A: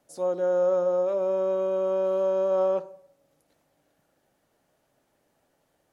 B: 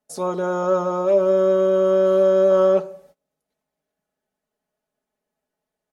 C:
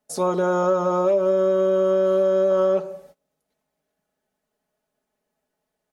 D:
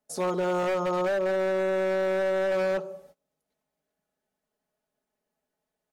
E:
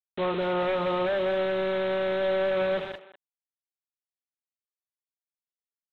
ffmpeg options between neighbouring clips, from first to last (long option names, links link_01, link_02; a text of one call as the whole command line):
ffmpeg -i in.wav -af "aecho=1:1:4.7:0.82,agate=range=-23dB:threshold=-58dB:ratio=16:detection=peak,volume=8.5dB" out.wav
ffmpeg -i in.wav -af "acompressor=threshold=-20dB:ratio=6,volume=3.5dB" out.wav
ffmpeg -i in.wav -af "aeval=exprs='0.15*(abs(mod(val(0)/0.15+3,4)-2)-1)':channel_layout=same,volume=-5dB" out.wav
ffmpeg -i in.wav -filter_complex "[0:a]aresample=8000,acrusher=bits=5:mix=0:aa=0.000001,aresample=44100,asplit=2[link_01][link_02];[link_02]adelay=200,highpass=300,lowpass=3400,asoftclip=type=hard:threshold=-27.5dB,volume=-14dB[link_03];[link_01][link_03]amix=inputs=2:normalize=0" out.wav